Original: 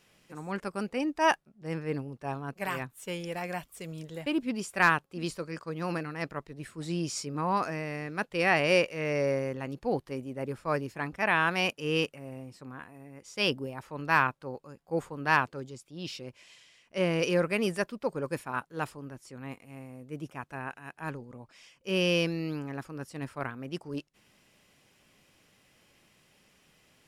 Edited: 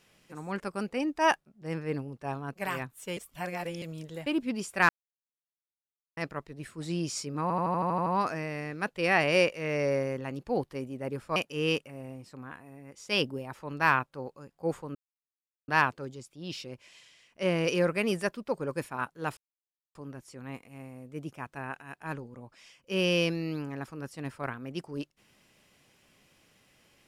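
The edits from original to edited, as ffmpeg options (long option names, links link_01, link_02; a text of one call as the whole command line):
ffmpeg -i in.wav -filter_complex "[0:a]asplit=16[link_01][link_02][link_03][link_04][link_05][link_06][link_07][link_08][link_09][link_10][link_11][link_12][link_13][link_14][link_15][link_16];[link_01]atrim=end=3.172[link_17];[link_02]atrim=start=3.168:end=3.822,asetpts=PTS-STARTPTS,areverse[link_18];[link_03]atrim=start=3.818:end=4.89,asetpts=PTS-STARTPTS,afade=type=out:start_time=1.068:duration=0.004:curve=hsin[link_19];[link_04]atrim=start=4.89:end=6.17,asetpts=PTS-STARTPTS,volume=0[link_20];[link_05]atrim=start=6.17:end=7.502,asetpts=PTS-STARTPTS,afade=type=in:duration=0.004:curve=hsin[link_21];[link_06]atrim=start=7.418:end=7.502[link_22];[link_07]atrim=start=7.418:end=7.502[link_23];[link_08]atrim=start=7.418:end=7.502[link_24];[link_09]atrim=start=7.418:end=7.502[link_25];[link_10]atrim=start=7.418:end=7.502[link_26];[link_11]atrim=start=7.418:end=7.502[link_27];[link_12]atrim=start=7.418:end=7.502[link_28];[link_13]atrim=start=7.418:end=10.722[link_29];[link_14]atrim=start=11.638:end=15.23,asetpts=PTS-STARTPTS,afade=type=out:start_time=3.588:duration=0.004:curve=hsin,apad=pad_dur=0.73[link_30];[link_15]atrim=start=15.23:end=18.92,asetpts=PTS-STARTPTS,afade=type=in:duration=0.004:curve=hsin,afade=type=out:start_time=3.686:duration=0.004:curve=hsin,apad=pad_dur=0.58[link_31];[link_16]atrim=start=18.92,asetpts=PTS-STARTPTS,afade=type=in:duration=0.004:curve=hsin[link_32];[link_17][link_18]acrossfade=duration=0.004:curve1=hsin:curve2=hsin[link_33];[link_19][link_20][link_21]concat=n=3:v=0:a=1[link_34];[link_33][link_34]acrossfade=duration=0.004:curve1=hsin:curve2=hsin[link_35];[link_35][link_22]acrossfade=duration=0.004:curve1=hsin:curve2=hsin[link_36];[link_36][link_23]acrossfade=duration=0.004:curve1=hsin:curve2=hsin[link_37];[link_37][link_24]acrossfade=duration=0.004:curve1=hsin:curve2=hsin[link_38];[link_38][link_25]acrossfade=duration=0.004:curve1=hsin:curve2=hsin[link_39];[link_39][link_26]acrossfade=duration=0.004:curve1=hsin:curve2=hsin[link_40];[link_40][link_27]acrossfade=duration=0.004:curve1=hsin:curve2=hsin[link_41];[link_41][link_28]acrossfade=duration=0.004:curve1=hsin:curve2=hsin[link_42];[link_42][link_29]acrossfade=duration=0.004:curve1=hsin:curve2=hsin[link_43];[link_30][link_31][link_32]concat=n=3:v=0:a=1[link_44];[link_43][link_44]acrossfade=duration=0.004:curve1=hsin:curve2=hsin" out.wav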